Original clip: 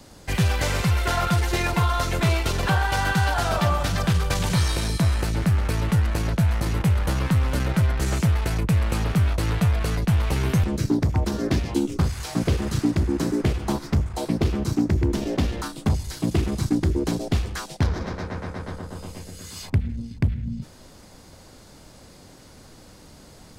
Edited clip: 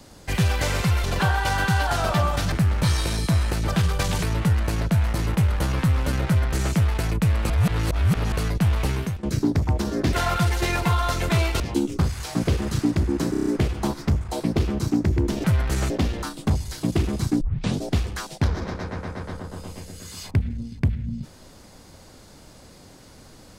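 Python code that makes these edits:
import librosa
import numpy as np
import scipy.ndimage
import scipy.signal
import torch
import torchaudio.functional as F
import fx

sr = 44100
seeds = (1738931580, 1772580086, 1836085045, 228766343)

y = fx.edit(x, sr, fx.move(start_s=1.04, length_s=1.47, to_s=11.6),
    fx.swap(start_s=3.99, length_s=0.55, other_s=5.39, other_length_s=0.31),
    fx.duplicate(start_s=7.74, length_s=0.46, to_s=15.29),
    fx.reverse_span(start_s=8.97, length_s=0.82),
    fx.fade_out_to(start_s=10.34, length_s=0.36, floor_db=-19.5),
    fx.stutter(start_s=13.31, slice_s=0.03, count=6),
    fx.tape_start(start_s=16.8, length_s=0.41), tone=tone)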